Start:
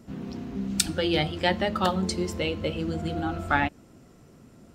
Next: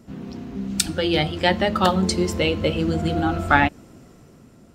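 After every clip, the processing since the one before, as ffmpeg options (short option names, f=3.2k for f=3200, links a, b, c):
-af "dynaudnorm=f=270:g=7:m=8dB,volume=1.5dB"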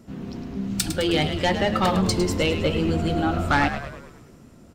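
-filter_complex "[0:a]asoftclip=type=tanh:threshold=-13.5dB,asplit=2[a][b];[b]asplit=6[c][d][e][f][g][h];[c]adelay=105,afreqshift=-78,volume=-9.5dB[i];[d]adelay=210,afreqshift=-156,volume=-15.2dB[j];[e]adelay=315,afreqshift=-234,volume=-20.9dB[k];[f]adelay=420,afreqshift=-312,volume=-26.5dB[l];[g]adelay=525,afreqshift=-390,volume=-32.2dB[m];[h]adelay=630,afreqshift=-468,volume=-37.9dB[n];[i][j][k][l][m][n]amix=inputs=6:normalize=0[o];[a][o]amix=inputs=2:normalize=0"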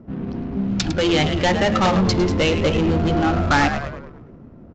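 -filter_complex "[0:a]asplit=2[a][b];[b]aeval=exprs='0.0631*(abs(mod(val(0)/0.0631+3,4)-2)-1)':c=same,volume=-8dB[c];[a][c]amix=inputs=2:normalize=0,adynamicsmooth=sensitivity=4.5:basefreq=1k,aresample=16000,aresample=44100,volume=3.5dB"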